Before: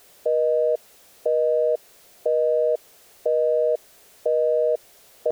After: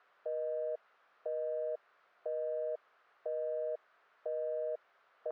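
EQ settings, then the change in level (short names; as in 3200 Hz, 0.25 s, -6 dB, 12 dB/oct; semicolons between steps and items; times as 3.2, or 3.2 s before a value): band-pass 1300 Hz, Q 2.8; air absorption 200 m; -1.0 dB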